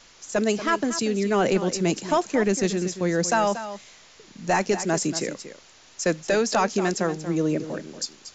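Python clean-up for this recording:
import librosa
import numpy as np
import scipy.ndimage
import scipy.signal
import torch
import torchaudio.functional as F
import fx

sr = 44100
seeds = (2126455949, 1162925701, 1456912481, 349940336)

y = fx.noise_reduce(x, sr, print_start_s=5.49, print_end_s=5.99, reduce_db=18.0)
y = fx.fix_echo_inverse(y, sr, delay_ms=234, level_db=-12.0)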